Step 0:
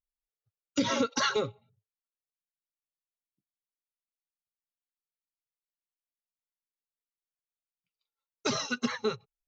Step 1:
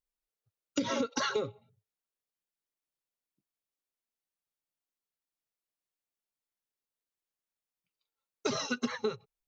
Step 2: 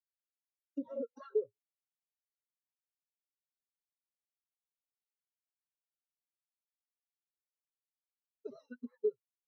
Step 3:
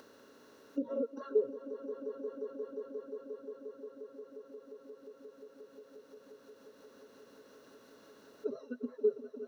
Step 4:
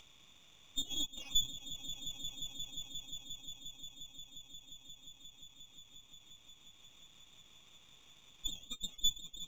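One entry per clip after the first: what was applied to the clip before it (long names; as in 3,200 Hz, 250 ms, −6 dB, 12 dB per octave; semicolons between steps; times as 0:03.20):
parametric band 400 Hz +4.5 dB 2 octaves; downward compressor, threshold −28 dBFS, peak gain reduction 9 dB
dynamic equaliser 530 Hz, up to +5 dB, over −43 dBFS, Q 1.3; pitch vibrato 11 Hz 33 cents; every bin expanded away from the loudest bin 2.5 to 1; level −7.5 dB
compressor on every frequency bin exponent 0.6; echo that builds up and dies away 177 ms, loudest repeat 5, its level −13 dB; upward compression, threshold −46 dBFS; level +2.5 dB
voice inversion scrambler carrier 3,900 Hz; half-wave rectification; level +1 dB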